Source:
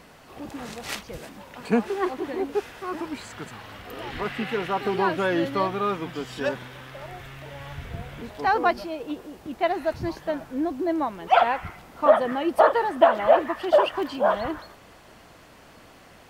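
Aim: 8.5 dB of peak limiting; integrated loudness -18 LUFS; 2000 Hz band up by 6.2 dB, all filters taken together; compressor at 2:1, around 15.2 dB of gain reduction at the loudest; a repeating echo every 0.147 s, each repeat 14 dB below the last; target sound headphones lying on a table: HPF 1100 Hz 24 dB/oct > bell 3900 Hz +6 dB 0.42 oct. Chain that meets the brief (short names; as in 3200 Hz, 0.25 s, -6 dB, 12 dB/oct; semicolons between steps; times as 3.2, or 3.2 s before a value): bell 2000 Hz +8 dB; compressor 2:1, threshold -40 dBFS; limiter -26.5 dBFS; HPF 1100 Hz 24 dB/oct; bell 3900 Hz +6 dB 0.42 oct; feedback echo 0.147 s, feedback 20%, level -14 dB; gain +23.5 dB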